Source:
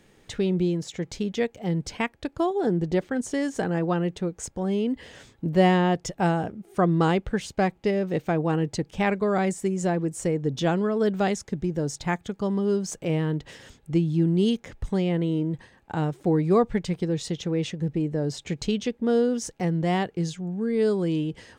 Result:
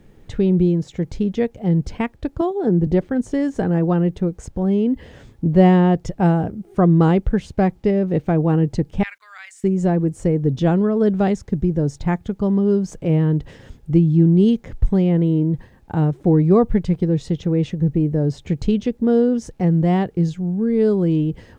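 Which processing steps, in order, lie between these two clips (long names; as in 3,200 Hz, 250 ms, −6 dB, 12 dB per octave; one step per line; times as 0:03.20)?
0:09.03–0:09.64: inverse Chebyshev high-pass filter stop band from 280 Hz, stop band 80 dB
spectral tilt −3 dB per octave
bit reduction 12 bits
0:02.41–0:02.87: multiband upward and downward expander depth 70%
level +1.5 dB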